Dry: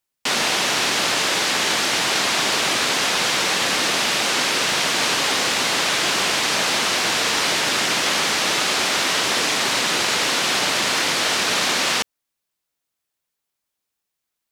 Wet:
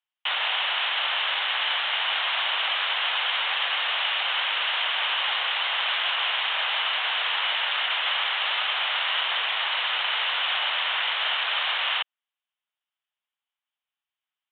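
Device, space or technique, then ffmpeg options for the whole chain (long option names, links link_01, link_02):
musical greeting card: -af "aresample=8000,aresample=44100,highpass=frequency=730:width=0.5412,highpass=frequency=730:width=1.3066,equalizer=frequency=3000:width_type=o:width=0.22:gain=7,volume=-5dB"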